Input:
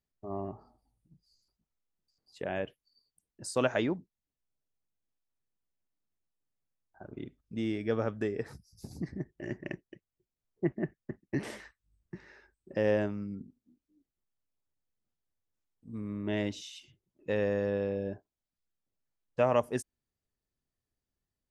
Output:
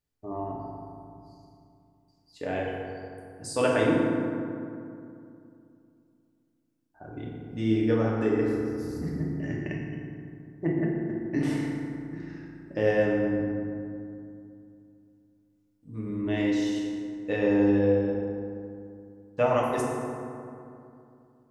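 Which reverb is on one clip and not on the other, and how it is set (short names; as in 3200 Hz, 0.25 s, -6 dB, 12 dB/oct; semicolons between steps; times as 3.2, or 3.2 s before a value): FDN reverb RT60 2.6 s, low-frequency decay 1.25×, high-frequency decay 0.45×, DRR -4.5 dB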